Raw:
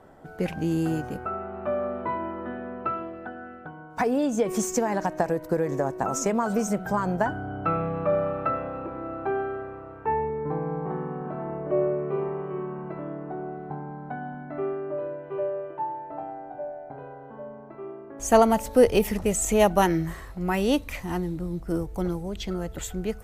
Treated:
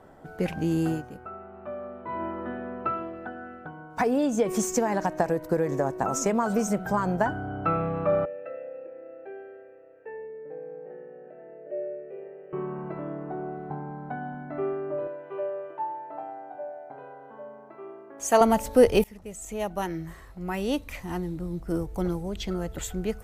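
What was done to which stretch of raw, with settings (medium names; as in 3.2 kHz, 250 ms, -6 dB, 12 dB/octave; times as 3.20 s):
0.89–2.22 s: dip -9 dB, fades 0.16 s
8.25–12.53 s: vowel filter e
15.07–18.41 s: high-pass 500 Hz 6 dB/octave
19.04–22.10 s: fade in, from -20.5 dB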